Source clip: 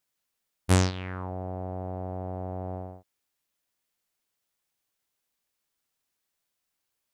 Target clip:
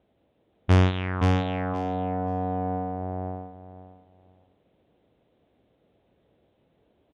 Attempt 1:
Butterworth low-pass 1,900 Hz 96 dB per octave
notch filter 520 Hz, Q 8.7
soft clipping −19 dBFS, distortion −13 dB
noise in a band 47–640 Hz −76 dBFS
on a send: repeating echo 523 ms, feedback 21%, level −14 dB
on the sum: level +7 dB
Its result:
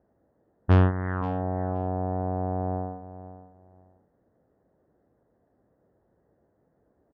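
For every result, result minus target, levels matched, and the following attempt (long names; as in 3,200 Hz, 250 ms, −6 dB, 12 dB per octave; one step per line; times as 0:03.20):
4,000 Hz band −11.5 dB; echo-to-direct −11 dB
Butterworth low-pass 3,800 Hz 96 dB per octave
notch filter 520 Hz, Q 8.7
soft clipping −19 dBFS, distortion −13 dB
noise in a band 47–640 Hz −76 dBFS
on a send: repeating echo 523 ms, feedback 21%, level −14 dB
on the sum: level +7 dB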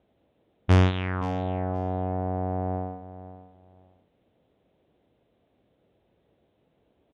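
echo-to-direct −11 dB
Butterworth low-pass 3,800 Hz 96 dB per octave
notch filter 520 Hz, Q 8.7
soft clipping −19 dBFS, distortion −13 dB
noise in a band 47–640 Hz −76 dBFS
on a send: repeating echo 523 ms, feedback 21%, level −3 dB
on the sum: level +7 dB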